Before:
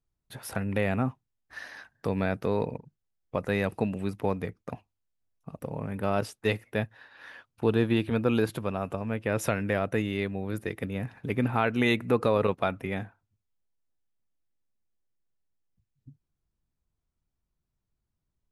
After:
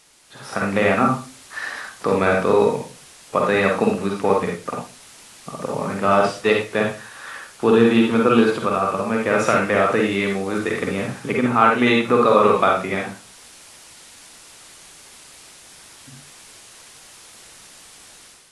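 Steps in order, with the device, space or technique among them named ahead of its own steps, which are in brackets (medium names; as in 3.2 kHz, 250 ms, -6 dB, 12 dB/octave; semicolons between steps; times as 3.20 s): filmed off a television (band-pass 230–6400 Hz; peaking EQ 1.2 kHz +10.5 dB 0.27 oct; reverberation RT60 0.35 s, pre-delay 43 ms, DRR 0 dB; white noise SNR 23 dB; level rider gain up to 10 dB; AAC 48 kbps 24 kHz)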